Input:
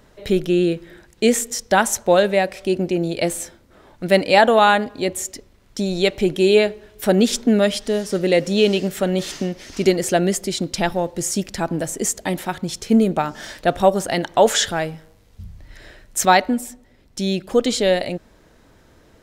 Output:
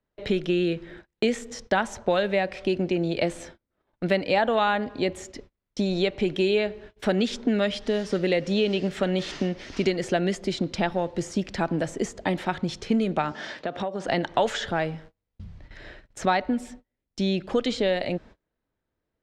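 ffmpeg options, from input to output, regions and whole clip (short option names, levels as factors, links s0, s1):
-filter_complex "[0:a]asettb=1/sr,asplit=3[s0][s1][s2];[s0]atrim=end=13.324[s3];[s1]atrim=start=13.32:end=14.07,asetpts=PTS-STARTPTS,afade=t=in:d=0.004:c=qsin,afade=t=out:st=0.746:d=0.004:c=qsin,highpass=170,lowpass=7100,acompressor=threshold=0.0562:ratio=8:attack=3.2:release=140:knee=1:detection=peak[s4];[s2]atrim=start=14.066[s5];[s3][s4]acrossfade=d=0.004:c1=hsin:c2=qsin[s6];[s6][s5]acrossfade=d=0.004:c1=qsin:c2=hsin,acrossover=split=120|1400[s7][s8][s9];[s7]acompressor=threshold=0.00794:ratio=4[s10];[s8]acompressor=threshold=0.0794:ratio=4[s11];[s9]acompressor=threshold=0.0398:ratio=4[s12];[s10][s11][s12]amix=inputs=3:normalize=0,lowpass=3900,agate=range=0.0316:threshold=0.00631:ratio=16:detection=peak"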